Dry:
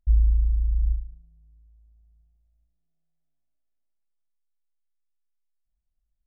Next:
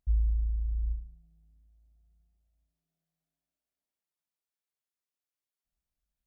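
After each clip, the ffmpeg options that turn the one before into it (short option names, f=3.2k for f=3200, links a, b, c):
-af "highpass=f=120:p=1"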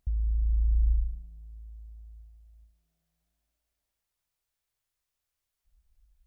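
-af "alimiter=level_in=4.5dB:limit=-24dB:level=0:latency=1:release=94,volume=-4.5dB,acompressor=threshold=-36dB:ratio=3,asubboost=boost=10:cutoff=72,volume=7.5dB"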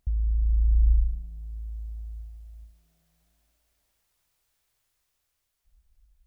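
-af "dynaudnorm=f=200:g=13:m=8dB,volume=2.5dB"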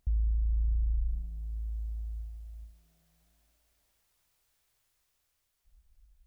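-af "alimiter=limit=-23.5dB:level=0:latency=1:release=123"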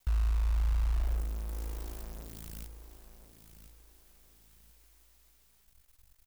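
-af "crystalizer=i=3:c=0,acrusher=bits=8:dc=4:mix=0:aa=0.000001,aecho=1:1:1035|2070|3105:0.266|0.0825|0.0256"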